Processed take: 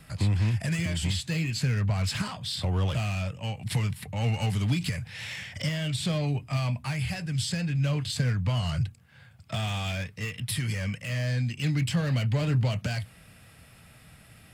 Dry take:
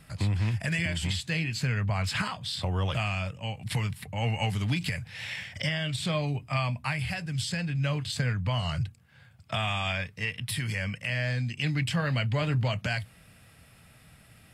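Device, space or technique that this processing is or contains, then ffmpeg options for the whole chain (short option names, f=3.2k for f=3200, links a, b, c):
one-band saturation: -filter_complex "[0:a]acrossover=split=490|4000[a][b][c];[b]asoftclip=type=tanh:threshold=-38.5dB[d];[a][d][c]amix=inputs=3:normalize=0,volume=2.5dB"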